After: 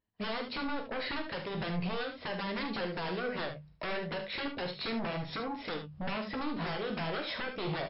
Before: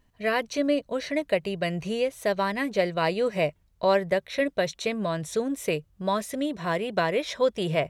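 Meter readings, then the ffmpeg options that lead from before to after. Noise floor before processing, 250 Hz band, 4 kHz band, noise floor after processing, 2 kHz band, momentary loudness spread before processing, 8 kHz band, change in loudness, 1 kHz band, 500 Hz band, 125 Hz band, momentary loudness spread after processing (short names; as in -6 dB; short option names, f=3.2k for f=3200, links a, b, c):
-65 dBFS, -8.0 dB, -4.0 dB, -52 dBFS, -6.5 dB, 5 LU, under -40 dB, -9.5 dB, -8.0 dB, -13.0 dB, -6.0 dB, 3 LU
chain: -filter_complex "[0:a]highpass=f=61:p=1,agate=range=-25dB:threshold=-58dB:ratio=16:detection=peak,highshelf=f=2.6k:g=-3.5,bandreject=f=50:t=h:w=6,bandreject=f=100:t=h:w=6,bandreject=f=150:t=h:w=6,bandreject=f=200:t=h:w=6,bandreject=f=250:t=h:w=6,acompressor=threshold=-33dB:ratio=6,aresample=16000,aeval=exprs='0.0631*sin(PI/2*3.98*val(0)/0.0631)':c=same,aresample=44100,flanger=delay=9.4:depth=9.8:regen=46:speed=0.36:shape=sinusoidal,asplit=2[a][b];[b]aecho=0:1:45|73:0.299|0.376[c];[a][c]amix=inputs=2:normalize=0,volume=-4.5dB" -ar 12000 -c:a libmp3lame -b:a 40k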